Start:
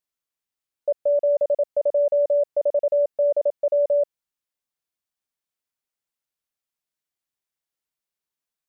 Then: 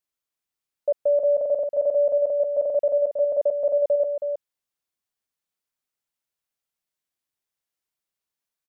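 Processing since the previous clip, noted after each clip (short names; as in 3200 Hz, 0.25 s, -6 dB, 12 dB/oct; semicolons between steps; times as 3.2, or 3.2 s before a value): echo 0.321 s -7.5 dB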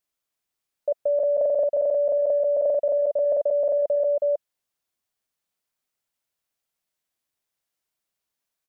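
bell 650 Hz +3 dB 0.31 oct; in parallel at +2 dB: negative-ratio compressor -23 dBFS, ratio -0.5; on the sum: gain -6 dB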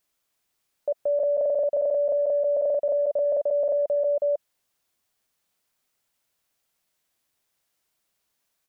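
limiter -27 dBFS, peak gain reduction 11.5 dB; gain +7.5 dB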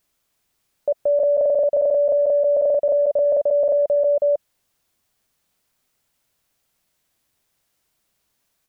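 low shelf 240 Hz +7 dB; gain +4.5 dB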